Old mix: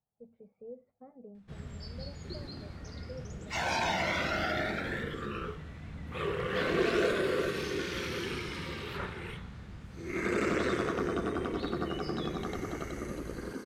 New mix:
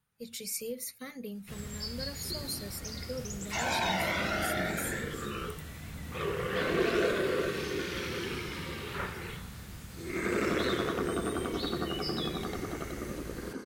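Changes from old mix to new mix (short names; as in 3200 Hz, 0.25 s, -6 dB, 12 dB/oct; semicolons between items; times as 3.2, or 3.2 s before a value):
speech: remove ladder low-pass 800 Hz, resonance 65%; first sound: remove tape spacing loss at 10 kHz 23 dB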